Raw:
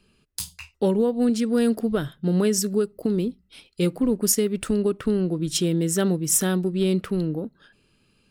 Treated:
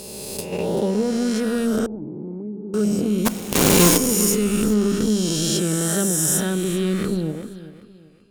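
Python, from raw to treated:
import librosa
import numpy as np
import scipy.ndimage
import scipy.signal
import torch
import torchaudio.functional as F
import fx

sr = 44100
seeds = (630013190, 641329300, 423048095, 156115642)

p1 = fx.spec_swells(x, sr, rise_s=2.54)
p2 = fx.low_shelf(p1, sr, hz=230.0, db=3.5)
p3 = fx.level_steps(p2, sr, step_db=23)
p4 = p2 + (p3 * librosa.db_to_amplitude(0.5))
p5 = fx.quant_companded(p4, sr, bits=2, at=(3.25, 3.96), fade=0.02)
p6 = fx.comb_fb(p5, sr, f0_hz=210.0, decay_s=0.61, harmonics='odd', damping=0.0, mix_pct=60)
p7 = p6 + fx.echo_feedback(p6, sr, ms=386, feedback_pct=34, wet_db=-14.5, dry=0)
p8 = fx.wow_flutter(p7, sr, seeds[0], rate_hz=2.1, depth_cents=26.0)
y = fx.formant_cascade(p8, sr, vowel='u', at=(1.86, 2.74))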